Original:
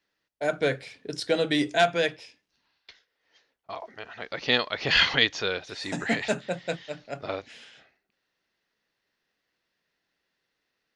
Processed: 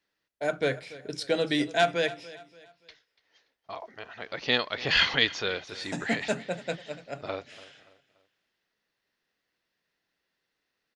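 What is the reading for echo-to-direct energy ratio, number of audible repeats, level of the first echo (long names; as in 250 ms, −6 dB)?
−18.0 dB, 2, −18.5 dB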